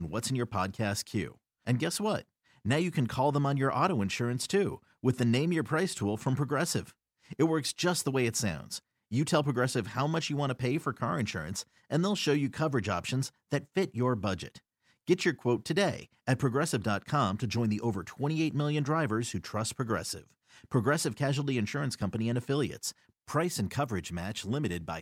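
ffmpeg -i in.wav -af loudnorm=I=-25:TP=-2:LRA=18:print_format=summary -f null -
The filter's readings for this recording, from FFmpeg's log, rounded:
Input Integrated:    -31.2 LUFS
Input True Peak:     -12.9 dBTP
Input LRA:             3.1 LU
Input Threshold:     -41.5 LUFS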